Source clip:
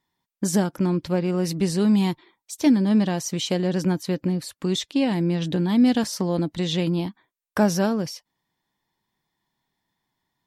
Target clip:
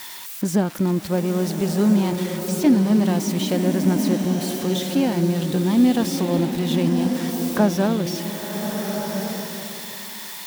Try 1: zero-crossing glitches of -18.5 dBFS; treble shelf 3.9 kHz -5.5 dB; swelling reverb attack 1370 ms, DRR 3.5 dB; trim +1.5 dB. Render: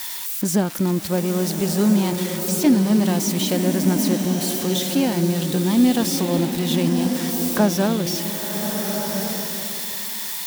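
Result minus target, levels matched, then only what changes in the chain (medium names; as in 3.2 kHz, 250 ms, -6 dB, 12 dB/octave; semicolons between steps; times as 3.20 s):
8 kHz band +5.5 dB
change: treble shelf 3.9 kHz -13.5 dB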